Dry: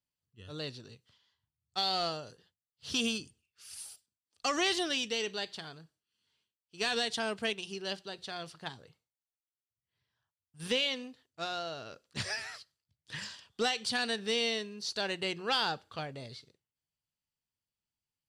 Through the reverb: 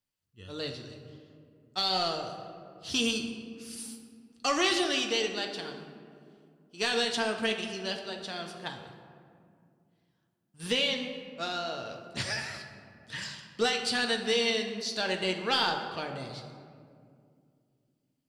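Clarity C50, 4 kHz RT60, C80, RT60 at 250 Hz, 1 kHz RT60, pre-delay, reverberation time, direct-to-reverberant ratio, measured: 6.5 dB, 1.1 s, 8.0 dB, 3.4 s, 2.1 s, 3 ms, 2.3 s, 2.5 dB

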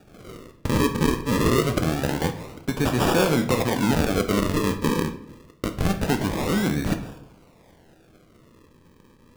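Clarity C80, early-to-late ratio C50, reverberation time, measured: 14.0 dB, 11.0 dB, 0.70 s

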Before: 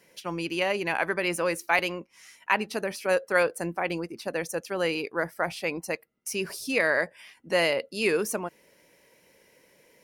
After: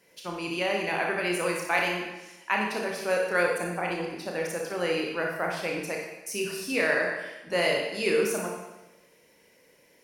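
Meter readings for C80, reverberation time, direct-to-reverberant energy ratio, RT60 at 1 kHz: 5.0 dB, 1.0 s, -0.5 dB, 1.0 s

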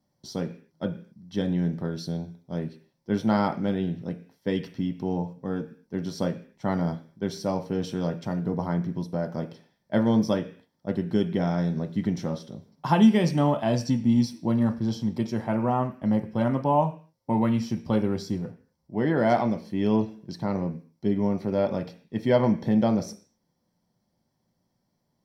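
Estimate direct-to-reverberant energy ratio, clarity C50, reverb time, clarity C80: 5.5 dB, 14.0 dB, 0.45 s, 18.5 dB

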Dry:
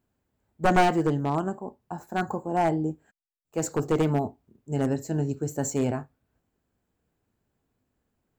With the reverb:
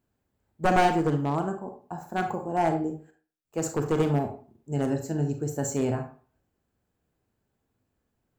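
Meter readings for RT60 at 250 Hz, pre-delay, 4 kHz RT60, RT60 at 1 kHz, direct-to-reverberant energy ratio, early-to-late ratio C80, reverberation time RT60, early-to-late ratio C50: 0.40 s, 32 ms, 0.25 s, 0.40 s, 6.0 dB, 14.0 dB, 0.40 s, 8.5 dB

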